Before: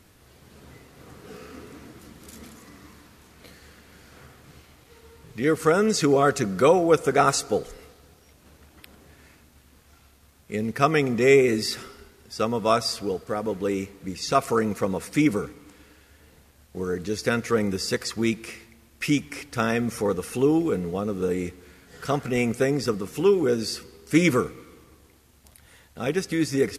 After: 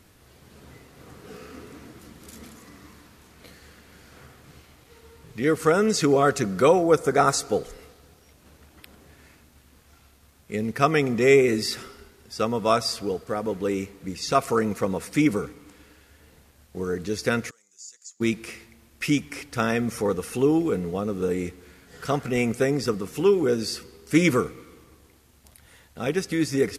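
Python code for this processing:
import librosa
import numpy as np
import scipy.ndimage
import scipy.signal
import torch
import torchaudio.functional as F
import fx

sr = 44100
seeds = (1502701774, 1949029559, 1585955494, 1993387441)

y = fx.peak_eq(x, sr, hz=2800.0, db=-9.0, octaves=0.42, at=(6.82, 7.41))
y = fx.bandpass_q(y, sr, hz=6900.0, q=12.0, at=(17.49, 18.2), fade=0.02)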